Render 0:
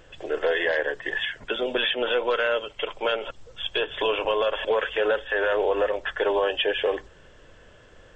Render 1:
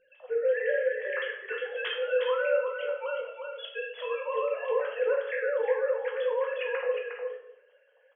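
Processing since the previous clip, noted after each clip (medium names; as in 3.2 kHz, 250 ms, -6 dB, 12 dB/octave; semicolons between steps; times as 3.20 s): formants replaced by sine waves; delay 359 ms -6 dB; simulated room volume 180 m³, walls mixed, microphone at 0.97 m; trim -9 dB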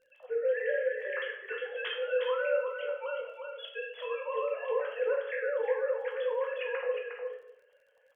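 crackle 27 per s -55 dBFS; trim -3 dB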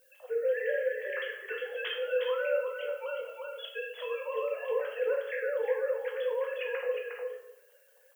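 dynamic bell 990 Hz, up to -5 dB, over -43 dBFS, Q 1.1; added noise violet -68 dBFS; trim +1.5 dB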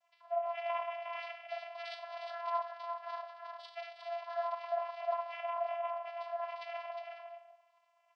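comb of notches 500 Hz; vocoder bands 8, saw 335 Hz; frequency shift +350 Hz; trim -1 dB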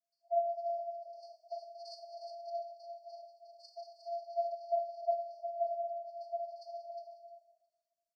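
delay 665 ms -22 dB; FFT band-reject 700–4300 Hz; three bands expanded up and down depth 40%; trim +1 dB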